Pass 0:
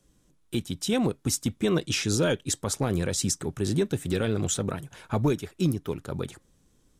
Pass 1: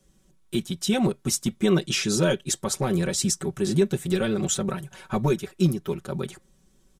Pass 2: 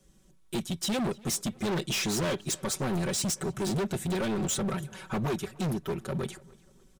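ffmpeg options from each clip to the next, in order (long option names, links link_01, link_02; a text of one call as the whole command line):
ffmpeg -i in.wav -af "aecho=1:1:5.3:0.86" out.wav
ffmpeg -i in.wav -filter_complex "[0:a]asoftclip=type=hard:threshold=-27dB,asplit=2[link_01][link_02];[link_02]adelay=293,lowpass=frequency=4800:poles=1,volume=-23dB,asplit=2[link_03][link_04];[link_04]adelay=293,lowpass=frequency=4800:poles=1,volume=0.41,asplit=2[link_05][link_06];[link_06]adelay=293,lowpass=frequency=4800:poles=1,volume=0.41[link_07];[link_01][link_03][link_05][link_07]amix=inputs=4:normalize=0" out.wav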